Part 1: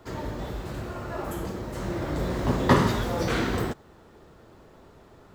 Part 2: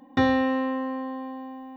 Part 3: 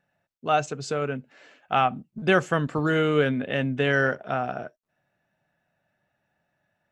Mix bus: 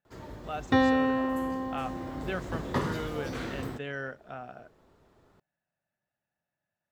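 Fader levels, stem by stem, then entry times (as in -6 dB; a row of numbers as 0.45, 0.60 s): -10.5, -1.5, -14.5 dB; 0.05, 0.55, 0.00 s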